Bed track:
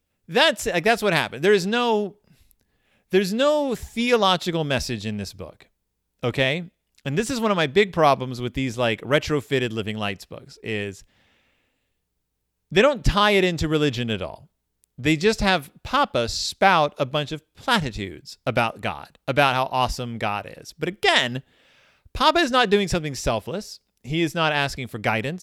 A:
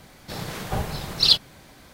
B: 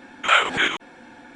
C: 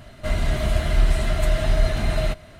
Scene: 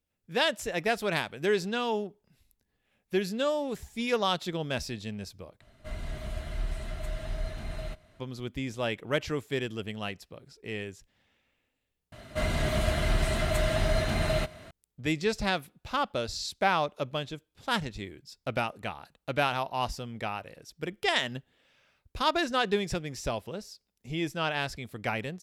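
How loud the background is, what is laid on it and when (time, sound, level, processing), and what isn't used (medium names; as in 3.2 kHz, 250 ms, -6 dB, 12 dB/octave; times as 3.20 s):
bed track -9 dB
5.61 s: replace with C -15 dB
12.12 s: replace with C -1.5 dB + high-pass 100 Hz 6 dB/octave
not used: A, B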